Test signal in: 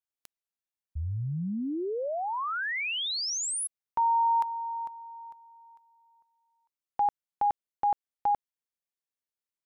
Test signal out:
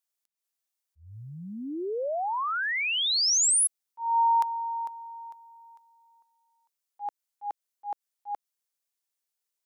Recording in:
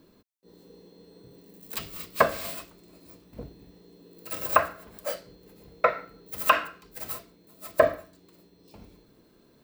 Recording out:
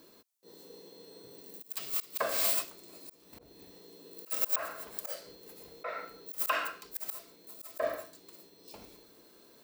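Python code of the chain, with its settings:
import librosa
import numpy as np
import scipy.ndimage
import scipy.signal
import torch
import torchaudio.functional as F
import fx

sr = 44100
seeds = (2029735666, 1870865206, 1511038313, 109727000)

y = fx.bass_treble(x, sr, bass_db=-14, treble_db=7)
y = fx.auto_swell(y, sr, attack_ms=222.0)
y = y * 10.0 ** (2.5 / 20.0)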